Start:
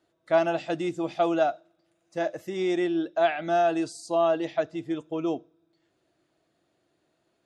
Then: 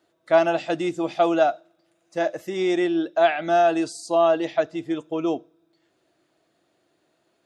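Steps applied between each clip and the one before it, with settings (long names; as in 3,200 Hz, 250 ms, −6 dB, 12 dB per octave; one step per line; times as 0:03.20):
low-shelf EQ 130 Hz −9.5 dB
level +5 dB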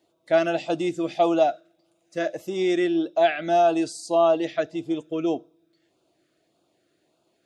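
auto-filter notch sine 1.7 Hz 850–1,900 Hz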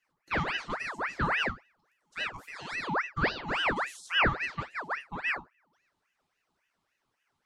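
healed spectral selection 0:02.51–0:02.93, 360–1,300 Hz
tuned comb filter 67 Hz, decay 0.2 s, harmonics all, mix 90%
ring modulator whose carrier an LFO sweeps 1,400 Hz, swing 65%, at 3.6 Hz
level −1.5 dB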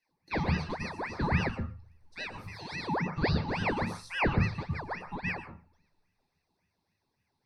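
convolution reverb RT60 0.30 s, pre-delay 111 ms, DRR 9 dB
level −6.5 dB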